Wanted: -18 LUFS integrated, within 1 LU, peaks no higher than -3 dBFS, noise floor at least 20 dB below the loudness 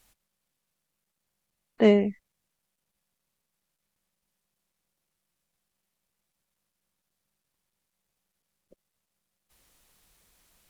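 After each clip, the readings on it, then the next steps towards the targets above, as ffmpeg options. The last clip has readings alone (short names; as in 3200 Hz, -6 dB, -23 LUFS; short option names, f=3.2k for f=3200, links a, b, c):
loudness -23.0 LUFS; peak -8.5 dBFS; loudness target -18.0 LUFS
-> -af "volume=5dB"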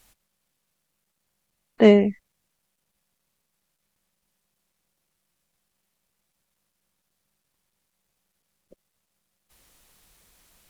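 loudness -18.0 LUFS; peak -3.5 dBFS; noise floor -78 dBFS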